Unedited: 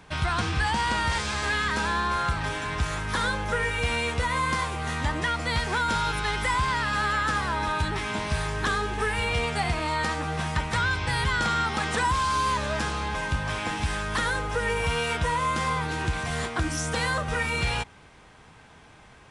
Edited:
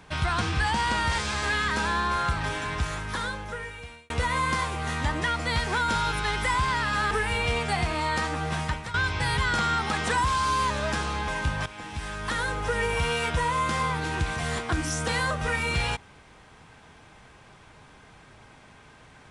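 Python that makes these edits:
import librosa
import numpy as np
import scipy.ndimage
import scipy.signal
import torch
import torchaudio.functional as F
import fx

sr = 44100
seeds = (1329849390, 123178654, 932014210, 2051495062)

y = fx.edit(x, sr, fx.fade_out_span(start_s=2.63, length_s=1.47),
    fx.cut(start_s=7.11, length_s=1.87),
    fx.fade_out_to(start_s=10.49, length_s=0.32, floor_db=-15.0),
    fx.fade_in_from(start_s=13.53, length_s=0.98, floor_db=-14.0), tone=tone)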